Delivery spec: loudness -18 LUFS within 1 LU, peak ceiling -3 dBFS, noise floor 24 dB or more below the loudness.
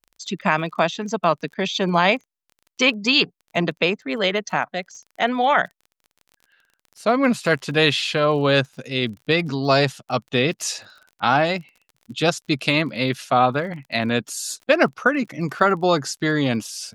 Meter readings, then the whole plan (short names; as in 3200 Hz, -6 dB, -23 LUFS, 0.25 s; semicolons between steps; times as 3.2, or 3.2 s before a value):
ticks 32/s; loudness -21.0 LUFS; peak -3.0 dBFS; loudness target -18.0 LUFS
-> de-click; gain +3 dB; limiter -3 dBFS